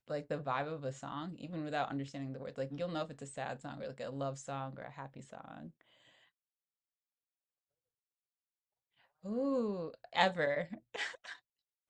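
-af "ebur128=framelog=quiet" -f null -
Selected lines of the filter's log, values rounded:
Integrated loudness:
  I:         -38.7 LUFS
  Threshold: -49.6 LUFS
Loudness range:
  LRA:        18.4 LU
  Threshold: -61.5 LUFS
  LRA low:   -55.6 LUFS
  LRA high:  -37.3 LUFS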